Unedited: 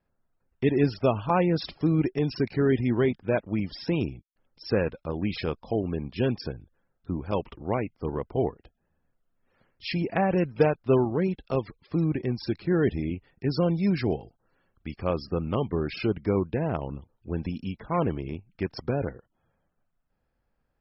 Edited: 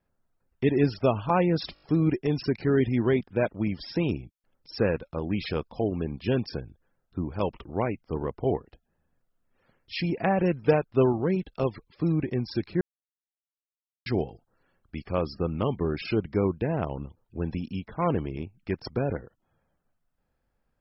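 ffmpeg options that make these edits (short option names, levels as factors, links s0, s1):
-filter_complex "[0:a]asplit=7[s0][s1][s2][s3][s4][s5][s6];[s0]atrim=end=1.762[s7];[s1]atrim=start=1.738:end=1.762[s8];[s2]atrim=start=1.738:end=1.762[s9];[s3]atrim=start=1.738:end=1.762[s10];[s4]atrim=start=1.738:end=12.73,asetpts=PTS-STARTPTS,afade=t=out:st=10.988:d=0.004:c=hsin[s11];[s5]atrim=start=12.73:end=13.98,asetpts=PTS-STARTPTS,volume=0[s12];[s6]atrim=start=13.98,asetpts=PTS-STARTPTS,afade=t=in:d=0.004:c=hsin[s13];[s7][s8]acrossfade=d=0.004:c1=hsin:c2=hsin[s14];[s14][s9]acrossfade=d=0.004:c1=hsin:c2=hsin[s15];[s15][s10]acrossfade=d=0.004:c1=hsin:c2=hsin[s16];[s11][s12][s13]concat=n=3:v=0:a=1[s17];[s16][s17]acrossfade=d=0.004:c1=hsin:c2=hsin"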